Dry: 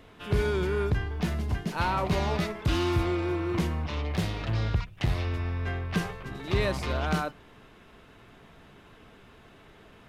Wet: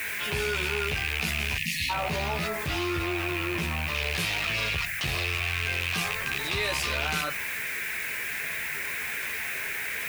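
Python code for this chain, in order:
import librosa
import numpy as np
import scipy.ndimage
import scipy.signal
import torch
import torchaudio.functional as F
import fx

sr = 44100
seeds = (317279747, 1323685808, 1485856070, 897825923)

y = fx.rattle_buzz(x, sr, strikes_db=-34.0, level_db=-21.0)
y = fx.chorus_voices(y, sr, voices=6, hz=0.45, base_ms=13, depth_ms=1.3, mix_pct=50)
y = fx.dmg_noise_band(y, sr, seeds[0], low_hz=1500.0, high_hz=2500.0, level_db=-51.0)
y = fx.spec_erase(y, sr, start_s=1.57, length_s=0.33, low_hz=290.0, high_hz=1700.0)
y = fx.high_shelf(y, sr, hz=2600.0, db=-10.5, at=(1.93, 3.95))
y = fx.quant_dither(y, sr, seeds[1], bits=10, dither='none')
y = fx.tilt_eq(y, sr, slope=3.5)
y = fx.env_flatten(y, sr, amount_pct=70)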